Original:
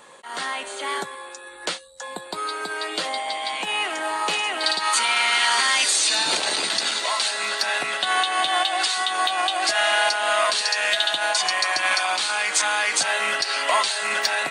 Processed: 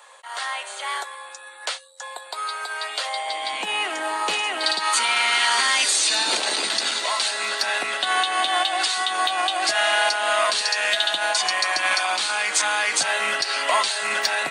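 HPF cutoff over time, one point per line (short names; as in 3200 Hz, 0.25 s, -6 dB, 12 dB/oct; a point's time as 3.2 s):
HPF 24 dB/oct
3.11 s 590 Hz
3.57 s 190 Hz
8.42 s 190 Hz
9.39 s 55 Hz
9.9 s 150 Hz
12.02 s 150 Hz
12.77 s 46 Hz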